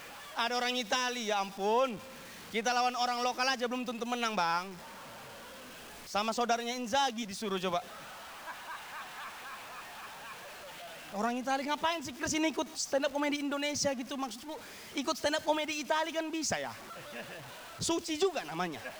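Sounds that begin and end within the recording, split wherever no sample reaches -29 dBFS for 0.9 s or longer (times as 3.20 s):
6.15–7.78 s
11.16–16.67 s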